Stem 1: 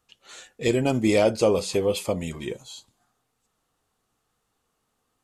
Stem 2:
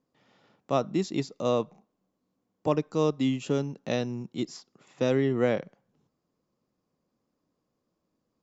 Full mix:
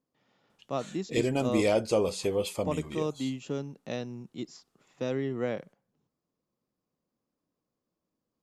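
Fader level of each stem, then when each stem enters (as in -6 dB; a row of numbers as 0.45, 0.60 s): -5.5, -6.5 dB; 0.50, 0.00 s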